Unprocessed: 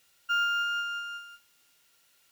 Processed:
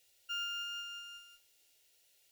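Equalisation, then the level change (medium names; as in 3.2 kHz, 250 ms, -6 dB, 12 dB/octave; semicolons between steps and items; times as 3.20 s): static phaser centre 500 Hz, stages 4; -3.0 dB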